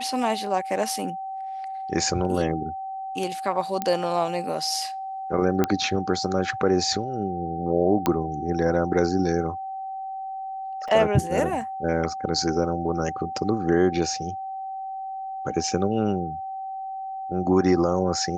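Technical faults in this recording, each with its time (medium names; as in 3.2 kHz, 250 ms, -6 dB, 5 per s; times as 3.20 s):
whine 770 Hz -30 dBFS
3.82 s: pop -12 dBFS
5.64 s: pop -8 dBFS
8.06 s: pop -8 dBFS
10.88 s: dropout 4.5 ms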